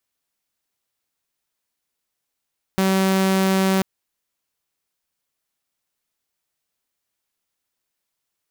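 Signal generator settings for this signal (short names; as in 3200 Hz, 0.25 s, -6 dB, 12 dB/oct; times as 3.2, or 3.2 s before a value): tone saw 191 Hz -13.5 dBFS 1.04 s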